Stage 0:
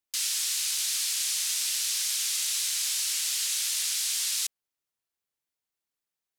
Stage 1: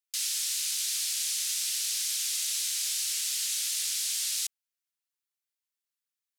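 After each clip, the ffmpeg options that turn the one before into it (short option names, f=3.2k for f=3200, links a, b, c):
-af "highpass=f=1k:w=0.5412,highpass=f=1k:w=1.3066,tiltshelf=f=1.4k:g=-4,volume=-5.5dB"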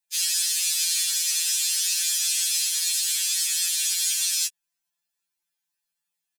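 -af "aecho=1:1:1.2:0.4,afftfilt=real='re*2.83*eq(mod(b,8),0)':imag='im*2.83*eq(mod(b,8),0)':win_size=2048:overlap=0.75,volume=8dB"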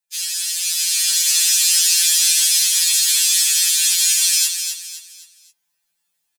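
-filter_complex "[0:a]asplit=2[a][b];[b]aecho=0:1:259|518|777|1036:0.447|0.156|0.0547|0.0192[c];[a][c]amix=inputs=2:normalize=0,dynaudnorm=f=280:g=7:m=9.5dB"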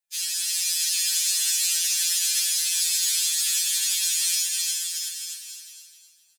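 -af "alimiter=limit=-12dB:level=0:latency=1:release=395,aecho=1:1:360|630|832.5|984.4|1098:0.631|0.398|0.251|0.158|0.1,volume=-4dB"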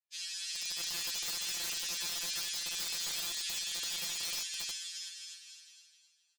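-af "highpass=650,lowpass=5.1k,aeval=exprs='(mod(11.2*val(0)+1,2)-1)/11.2':c=same,aeval=exprs='0.0944*(cos(1*acos(clip(val(0)/0.0944,-1,1)))-cos(1*PI/2))+0.000944*(cos(4*acos(clip(val(0)/0.0944,-1,1)))-cos(4*PI/2))':c=same,volume=-8dB"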